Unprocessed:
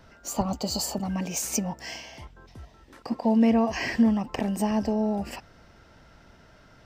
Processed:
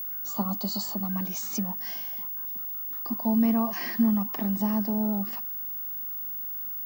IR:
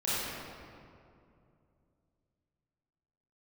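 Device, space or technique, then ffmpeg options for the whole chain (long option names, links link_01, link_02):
old television with a line whistle: -af "highpass=frequency=190:width=0.5412,highpass=frequency=190:width=1.3066,equalizer=frequency=200:width_type=q:width=4:gain=9,equalizer=frequency=500:width_type=q:width=4:gain=-10,equalizer=frequency=1200:width_type=q:width=4:gain=8,equalizer=frequency=2600:width_type=q:width=4:gain=-7,equalizer=frequency=3800:width_type=q:width=4:gain=7,lowpass=frequency=7000:width=0.5412,lowpass=frequency=7000:width=1.3066,aeval=exprs='val(0)+0.0501*sin(2*PI*15625*n/s)':channel_layout=same,volume=-5.5dB"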